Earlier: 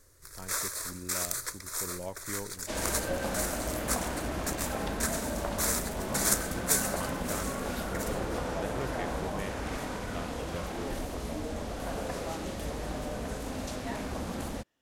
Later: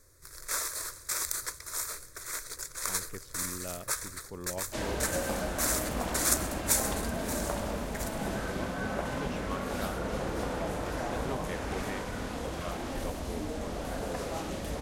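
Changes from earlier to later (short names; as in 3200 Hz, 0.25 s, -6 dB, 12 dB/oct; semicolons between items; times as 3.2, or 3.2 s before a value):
speech: entry +2.50 s; second sound: entry +2.05 s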